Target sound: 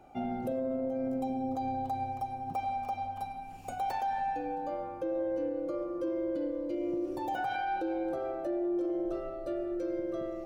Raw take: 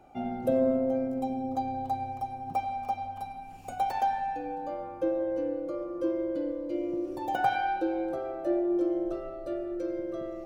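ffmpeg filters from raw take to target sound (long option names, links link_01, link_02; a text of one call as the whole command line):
ffmpeg -i in.wav -af "alimiter=level_in=2dB:limit=-24dB:level=0:latency=1:release=43,volume=-2dB" out.wav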